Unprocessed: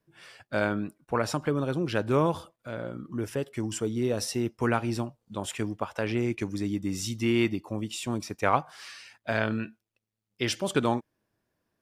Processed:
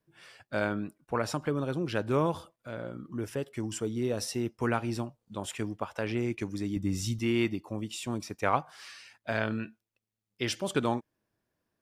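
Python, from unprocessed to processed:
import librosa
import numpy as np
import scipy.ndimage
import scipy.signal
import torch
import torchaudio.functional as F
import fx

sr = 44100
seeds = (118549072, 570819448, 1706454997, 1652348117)

y = fx.low_shelf(x, sr, hz=140.0, db=11.5, at=(6.76, 7.19))
y = y * librosa.db_to_amplitude(-3.0)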